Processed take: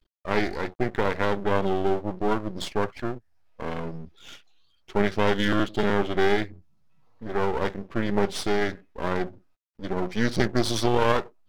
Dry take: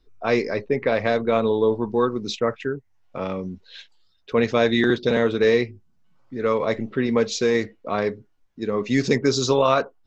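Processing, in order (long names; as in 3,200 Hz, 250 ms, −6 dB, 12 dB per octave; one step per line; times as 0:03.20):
half-wave rectification
change of speed 0.876×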